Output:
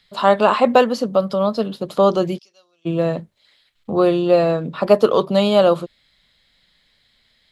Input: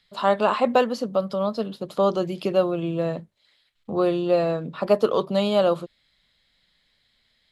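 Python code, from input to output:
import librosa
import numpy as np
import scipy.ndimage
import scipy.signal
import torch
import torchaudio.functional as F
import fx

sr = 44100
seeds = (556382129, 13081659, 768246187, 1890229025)

y = fx.bandpass_q(x, sr, hz=5700.0, q=13.0, at=(2.37, 2.85), fade=0.02)
y = F.gain(torch.from_numpy(y), 6.0).numpy()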